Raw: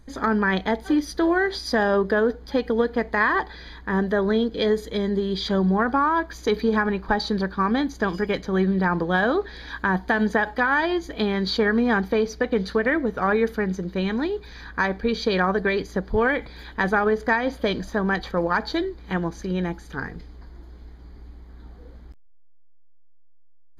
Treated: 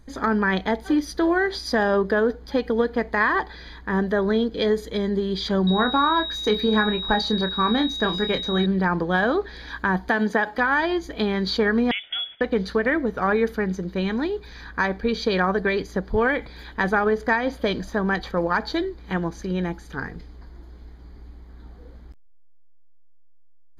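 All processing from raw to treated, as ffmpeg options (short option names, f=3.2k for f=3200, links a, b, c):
-filter_complex "[0:a]asettb=1/sr,asplit=3[a][b][c];[a]atrim=end=5.674[d];[b]atrim=start=5.67:end=8.66,asetpts=PTS-STARTPTS,afade=t=in:d=0.004:c=qsin,afade=t=out:st=2.986:d=0.004:c=qsin,aeval=exprs='val(0)+0.0447*sin(2*PI*3800*n/s)':c=same,asplit=2[e][f];[f]adelay=28,volume=-8.5dB[g];[e][g]amix=inputs=2:normalize=0,atrim=end_sample=131859[h];[c]atrim=start=8.656[i];[d][h]acrossfade=d=0.004:c1=hsin:c2=qsin[j];[j][i]acrossfade=d=0.004:c1=qsin:c2=hsin,asettb=1/sr,asplit=3[k][l][m];[k]atrim=end=10.094[n];[l]atrim=start=10.09:end=10.58,asetpts=PTS-STARTPTS,afade=t=in:d=0.004:c=qsin,afade=t=out:st=0.486:d=0.004:c=qsin,highpass=150,acompressor=mode=upward:threshold=-32dB:ratio=2.5:attack=3.2:release=140:knee=2.83:detection=peak[o];[m]atrim=start=10.576[p];[n][o]acrossfade=d=0.004:c1=hsin:c2=qsin[q];[q][p]acrossfade=d=0.004:c1=qsin:c2=hsin,asettb=1/sr,asplit=3[r][s][t];[r]atrim=end=11.914[u];[s]atrim=start=11.91:end=12.41,asetpts=PTS-STARTPTS,afade=t=in:d=0.004:c=qsin,afade=t=out:st=0.496:d=0.004:c=qsin,highpass=f=410:w=0.5412,highpass=f=410:w=1.3066,acompressor=threshold=-33dB:ratio=1.5:attack=3.2:release=140:knee=1:detection=peak,lowpass=f=3.2k:t=q:w=0.5098,lowpass=f=3.2k:t=q:w=0.6013,lowpass=f=3.2k:t=q:w=0.9,lowpass=f=3.2k:t=q:w=2.563,afreqshift=-3800[v];[t]atrim=start=12.406[w];[u][v]acrossfade=d=0.004:c1=hsin:c2=qsin[x];[x][w]acrossfade=d=0.004:c1=qsin:c2=hsin"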